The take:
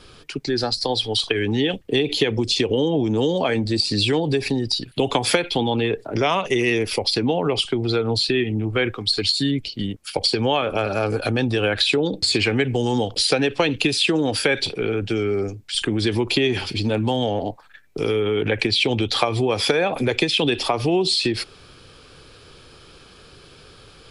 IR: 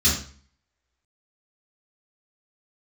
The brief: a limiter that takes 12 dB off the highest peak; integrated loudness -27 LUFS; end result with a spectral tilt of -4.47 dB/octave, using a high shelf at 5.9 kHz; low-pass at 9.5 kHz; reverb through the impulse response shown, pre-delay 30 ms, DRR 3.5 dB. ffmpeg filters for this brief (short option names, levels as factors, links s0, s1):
-filter_complex "[0:a]lowpass=9500,highshelf=f=5900:g=-4,alimiter=limit=0.158:level=0:latency=1,asplit=2[s0][s1];[1:a]atrim=start_sample=2205,adelay=30[s2];[s1][s2]afir=irnorm=-1:irlink=0,volume=0.126[s3];[s0][s3]amix=inputs=2:normalize=0,volume=0.531"